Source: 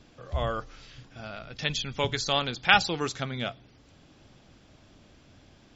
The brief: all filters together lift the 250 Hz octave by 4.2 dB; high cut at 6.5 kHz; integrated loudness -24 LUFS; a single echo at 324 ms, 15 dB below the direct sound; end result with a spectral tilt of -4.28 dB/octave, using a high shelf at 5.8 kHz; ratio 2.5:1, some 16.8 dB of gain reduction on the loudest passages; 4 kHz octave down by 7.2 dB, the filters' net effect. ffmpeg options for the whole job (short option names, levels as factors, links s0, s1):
-af "lowpass=6500,equalizer=f=250:t=o:g=5.5,equalizer=f=4000:t=o:g=-6.5,highshelf=f=5800:g=-8.5,acompressor=threshold=0.00794:ratio=2.5,aecho=1:1:324:0.178,volume=7.94"